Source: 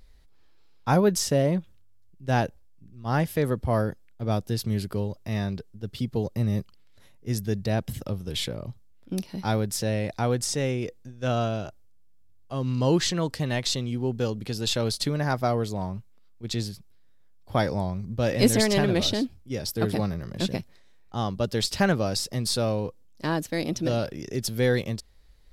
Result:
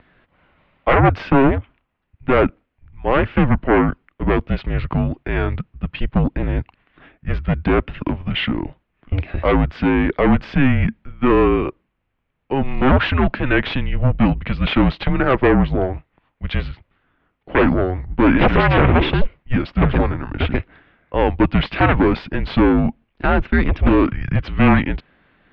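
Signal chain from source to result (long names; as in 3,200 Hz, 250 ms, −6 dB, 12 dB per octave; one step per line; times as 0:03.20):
sine wavefolder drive 13 dB, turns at −7 dBFS
single-sideband voice off tune −270 Hz 240–2,900 Hz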